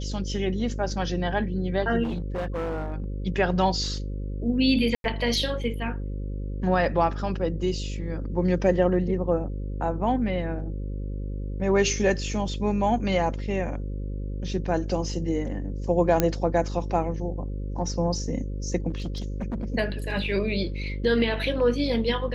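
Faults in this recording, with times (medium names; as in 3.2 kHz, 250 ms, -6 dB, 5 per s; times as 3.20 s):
buzz 50 Hz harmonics 11 -31 dBFS
2.03–3.04 s: clipped -25.5 dBFS
4.95–5.04 s: dropout 92 ms
16.20 s: pop -6 dBFS
18.89–19.65 s: clipped -26 dBFS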